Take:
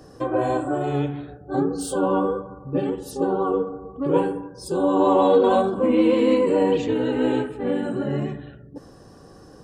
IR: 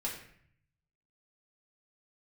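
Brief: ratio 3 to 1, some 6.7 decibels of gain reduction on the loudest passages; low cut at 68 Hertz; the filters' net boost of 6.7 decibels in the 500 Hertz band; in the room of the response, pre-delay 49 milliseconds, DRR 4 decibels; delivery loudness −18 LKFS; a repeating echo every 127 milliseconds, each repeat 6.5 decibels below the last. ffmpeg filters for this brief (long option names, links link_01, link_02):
-filter_complex "[0:a]highpass=68,equalizer=frequency=500:width_type=o:gain=7.5,acompressor=threshold=-15dB:ratio=3,aecho=1:1:127|254|381|508|635|762:0.473|0.222|0.105|0.0491|0.0231|0.0109,asplit=2[link_01][link_02];[1:a]atrim=start_sample=2205,adelay=49[link_03];[link_02][link_03]afir=irnorm=-1:irlink=0,volume=-6.5dB[link_04];[link_01][link_04]amix=inputs=2:normalize=0"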